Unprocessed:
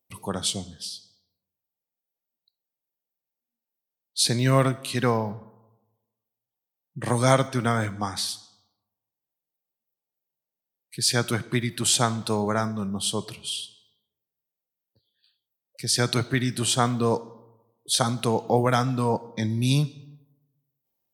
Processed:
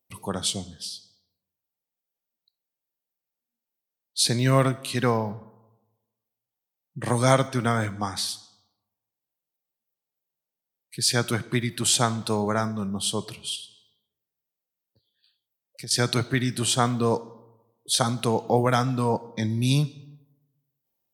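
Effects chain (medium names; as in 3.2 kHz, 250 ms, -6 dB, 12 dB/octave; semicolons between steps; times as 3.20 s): 13.55–15.91 s: compression 6:1, threshold -36 dBFS, peak gain reduction 12.5 dB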